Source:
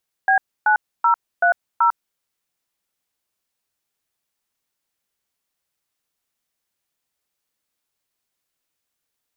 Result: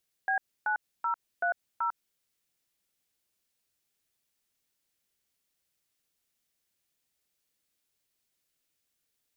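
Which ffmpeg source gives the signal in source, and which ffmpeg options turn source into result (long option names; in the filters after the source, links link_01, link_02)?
-f lavfi -i "aevalsrc='0.178*clip(min(mod(t,0.381),0.099-mod(t,0.381))/0.002,0,1)*(eq(floor(t/0.381),0)*(sin(2*PI*770*mod(t,0.381))+sin(2*PI*1633*mod(t,0.381)))+eq(floor(t/0.381),1)*(sin(2*PI*852*mod(t,0.381))+sin(2*PI*1477*mod(t,0.381)))+eq(floor(t/0.381),2)*(sin(2*PI*941*mod(t,0.381))+sin(2*PI*1336*mod(t,0.381)))+eq(floor(t/0.381),3)*(sin(2*PI*697*mod(t,0.381))+sin(2*PI*1477*mod(t,0.381)))+eq(floor(t/0.381),4)*(sin(2*PI*941*mod(t,0.381))+sin(2*PI*1336*mod(t,0.381))))':duration=1.905:sample_rate=44100"
-af "alimiter=limit=-17.5dB:level=0:latency=1:release=72,equalizer=frequency=1000:width_type=o:width=1.4:gain=-6.5"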